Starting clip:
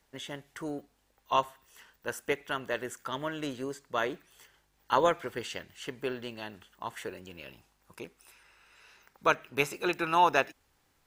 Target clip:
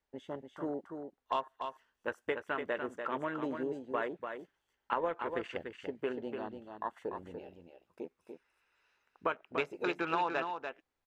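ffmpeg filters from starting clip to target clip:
-filter_complex "[0:a]lowpass=f=2.9k:p=1,equalizer=f=130:w=1.2:g=-7.5,asplit=2[a][b];[b]adelay=12,volume=-13dB[c];[a][c]amix=inputs=2:normalize=0,afwtdn=0.00794,acompressor=threshold=-33dB:ratio=4,asplit=2[d][e];[e]aecho=0:1:292:0.473[f];[d][f]amix=inputs=2:normalize=0,volume=2dB"

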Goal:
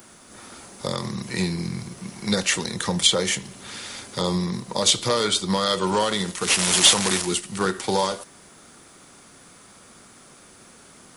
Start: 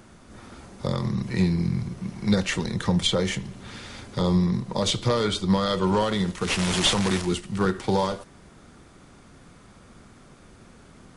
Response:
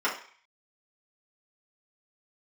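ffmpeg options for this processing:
-af "aemphasis=mode=production:type=bsi,volume=2.5dB"

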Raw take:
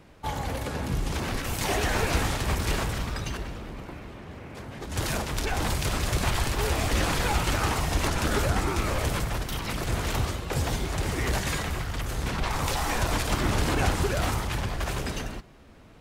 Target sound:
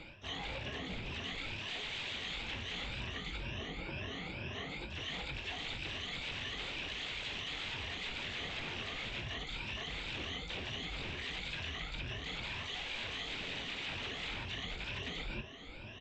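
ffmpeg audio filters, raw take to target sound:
-filter_complex "[0:a]afftfilt=real='re*pow(10,24/40*sin(2*PI*(1.4*log(max(b,1)*sr/1024/100)/log(2)-(2.1)*(pts-256)/sr)))':imag='im*pow(10,24/40*sin(2*PI*(1.4*log(max(b,1)*sr/1024/100)/log(2)-(2.1)*(pts-256)/sr)))':win_size=1024:overlap=0.75,aresample=8000,aeval=exprs='0.0841*(abs(mod(val(0)/0.0841+3,4)-2)-1)':c=same,aresample=44100,highshelf=f=1.8k:t=q:w=1.5:g=9,asplit=2[a][b];[b]adelay=22,volume=-12dB[c];[a][c]amix=inputs=2:normalize=0,asplit=4[d][e][f][g];[e]asetrate=52444,aresample=44100,atempo=0.840896,volume=-11dB[h];[f]asetrate=55563,aresample=44100,atempo=0.793701,volume=-12dB[i];[g]asetrate=88200,aresample=44100,atempo=0.5,volume=-17dB[j];[d][h][i][j]amix=inputs=4:normalize=0,areverse,acompressor=threshold=-33dB:ratio=16,areverse,volume=-5dB"

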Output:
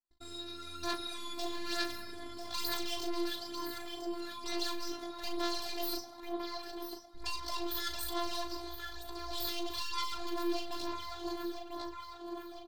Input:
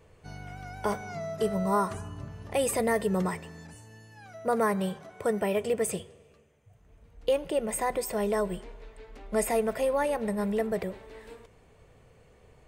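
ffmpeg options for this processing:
-filter_complex "[0:a]agate=range=-52dB:threshold=-51dB:ratio=16:detection=peak,equalizer=f=400:t=o:w=0.67:g=-3,equalizer=f=1.6k:t=o:w=0.67:g=-7,equalizer=f=10k:t=o:w=0.67:g=-7,aecho=1:1:1000|2000|3000|4000:0.224|0.101|0.0453|0.0204,aeval=exprs='(tanh(56.2*val(0)+0.55)-tanh(0.55))/56.2':c=same,asetrate=76340,aresample=44100,atempo=0.577676,equalizer=f=4.3k:t=o:w=0.59:g=12.5,acrossover=split=3200[a][b];[a]alimiter=level_in=15.5dB:limit=-24dB:level=0:latency=1,volume=-15.5dB[c];[c][b]amix=inputs=2:normalize=0,asplit=2[d][e];[e]adelay=38,volume=-6dB[f];[d][f]amix=inputs=2:normalize=0,aphaser=in_gain=1:out_gain=1:delay=3:decay=0.49:speed=1.1:type=sinusoidal,afftfilt=real='hypot(re,im)*cos(PI*b)':imag='0':win_size=512:overlap=0.75,volume=5.5dB"

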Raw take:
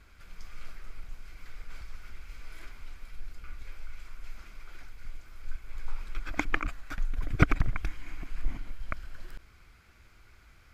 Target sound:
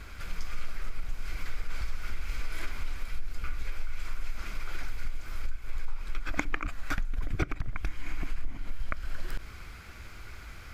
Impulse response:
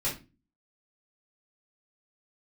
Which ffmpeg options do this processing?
-filter_complex "[0:a]acompressor=threshold=-37dB:ratio=16,asplit=2[a][b];[1:a]atrim=start_sample=2205[c];[b][c]afir=irnorm=-1:irlink=0,volume=-27dB[d];[a][d]amix=inputs=2:normalize=0,volume=12dB"

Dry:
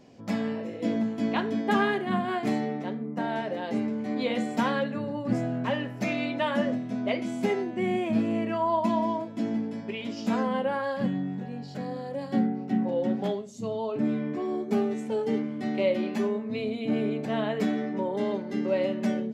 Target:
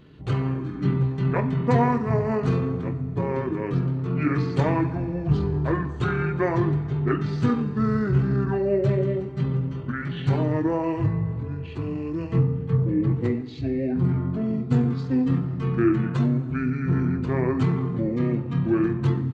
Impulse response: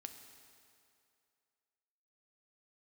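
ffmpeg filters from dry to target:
-filter_complex "[0:a]asetrate=26222,aresample=44100,atempo=1.68179,bandreject=f=580:w=12,asplit=2[a][b];[1:a]atrim=start_sample=2205[c];[b][c]afir=irnorm=-1:irlink=0,volume=4dB[d];[a][d]amix=inputs=2:normalize=0"

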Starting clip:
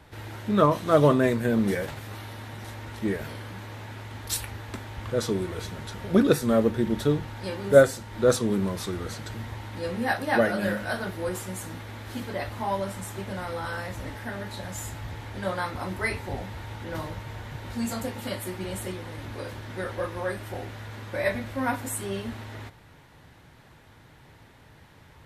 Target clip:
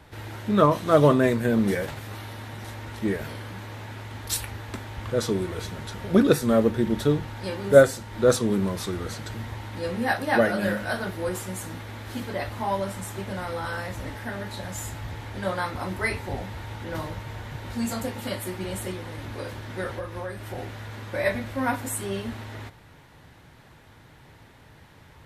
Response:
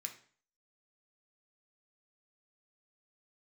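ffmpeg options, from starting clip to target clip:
-filter_complex "[0:a]asettb=1/sr,asplit=3[a][b][c];[a]atrim=end=19.904[d];[b]atrim=start=19.9:end=20.58,asetpts=PTS-STARTPTS,afade=t=in:d=0.004:c=qsin,afade=t=out:st=0.676:d=0.004:c=qsin,acrossover=split=130[e][f];[f]acompressor=threshold=-33dB:ratio=5[g];[e][g]amix=inputs=2:normalize=0[h];[c]atrim=start=20.576[i];[d][h]acrossfade=d=0.004:c1=hsin:c2=qsin[j];[j][i]acrossfade=d=0.004:c1=qsin:c2=hsin,volume=1.5dB"

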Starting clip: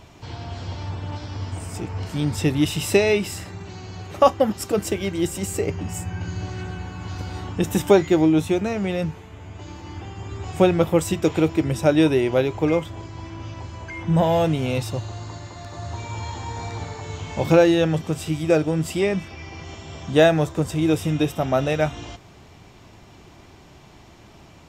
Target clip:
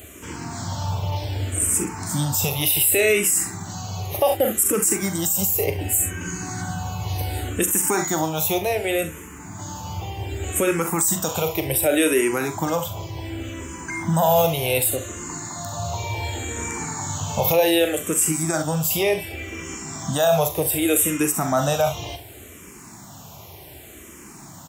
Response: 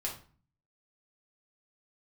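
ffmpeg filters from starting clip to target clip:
-filter_complex "[0:a]highpass=70,highshelf=f=12k:g=10.5,acrossover=split=490[a][b];[a]acompressor=threshold=-28dB:ratio=6[c];[b]aexciter=amount=4.5:drive=6.7:freq=6.9k[d];[c][d]amix=inputs=2:normalize=0,aecho=1:1:42|69:0.299|0.178,alimiter=limit=-14dB:level=0:latency=1:release=42,asplit=2[e][f];[f]afreqshift=-0.67[g];[e][g]amix=inputs=2:normalize=1,volume=7dB"

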